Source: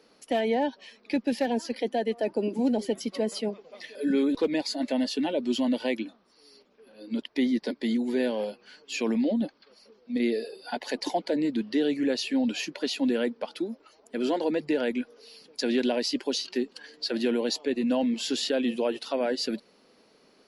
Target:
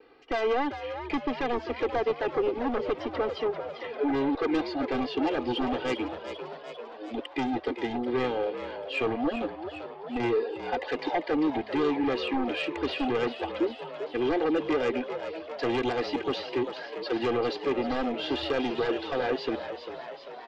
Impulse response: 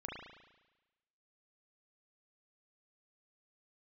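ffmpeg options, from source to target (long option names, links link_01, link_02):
-filter_complex "[0:a]lowpass=frequency=3000:width=0.5412,lowpass=frequency=3000:width=1.3066,aeval=exprs='0.178*(cos(1*acos(clip(val(0)/0.178,-1,1)))-cos(1*PI/2))+0.0708*(cos(5*acos(clip(val(0)/0.178,-1,1)))-cos(5*PI/2))':channel_layout=same,aecho=1:1:2.5:0.96,agate=range=-33dB:threshold=-51dB:ratio=3:detection=peak,asplit=2[link_01][link_02];[link_02]asplit=8[link_03][link_04][link_05][link_06][link_07][link_08][link_09][link_10];[link_03]adelay=395,afreqshift=74,volume=-10dB[link_11];[link_04]adelay=790,afreqshift=148,volume=-14dB[link_12];[link_05]adelay=1185,afreqshift=222,volume=-18dB[link_13];[link_06]adelay=1580,afreqshift=296,volume=-22dB[link_14];[link_07]adelay=1975,afreqshift=370,volume=-26.1dB[link_15];[link_08]adelay=2370,afreqshift=444,volume=-30.1dB[link_16];[link_09]adelay=2765,afreqshift=518,volume=-34.1dB[link_17];[link_10]adelay=3160,afreqshift=592,volume=-38.1dB[link_18];[link_11][link_12][link_13][link_14][link_15][link_16][link_17][link_18]amix=inputs=8:normalize=0[link_19];[link_01][link_19]amix=inputs=2:normalize=0,volume=-8dB"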